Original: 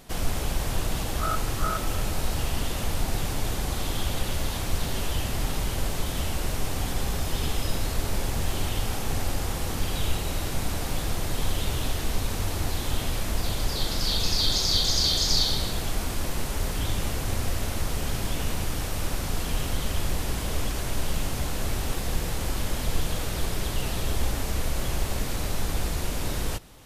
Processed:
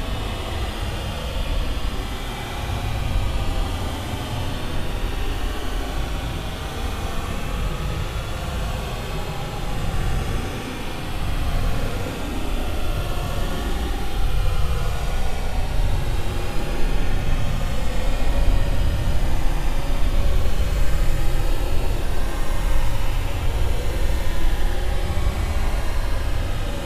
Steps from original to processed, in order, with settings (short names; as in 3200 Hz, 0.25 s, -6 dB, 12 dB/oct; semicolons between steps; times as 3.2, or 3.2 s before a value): grains, pitch spread up and down by 0 st; spring tank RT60 3.6 s, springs 47/54 ms, chirp 25 ms, DRR -7 dB; Paulstretch 31×, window 0.05 s, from 8.82; gain -3 dB